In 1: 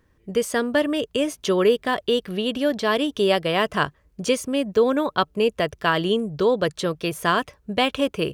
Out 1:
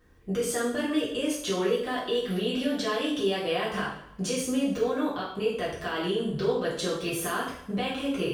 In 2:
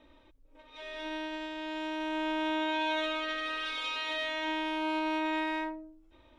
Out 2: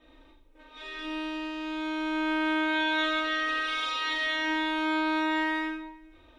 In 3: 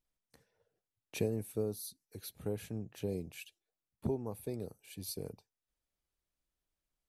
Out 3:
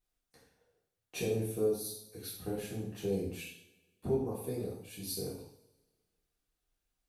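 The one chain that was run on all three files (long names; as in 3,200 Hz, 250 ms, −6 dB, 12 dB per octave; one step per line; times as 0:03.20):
downward compressor, threshold −24 dBFS
brickwall limiter −23 dBFS
coupled-rooms reverb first 0.59 s, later 1.6 s, from −20 dB, DRR −7.5 dB
level −4 dB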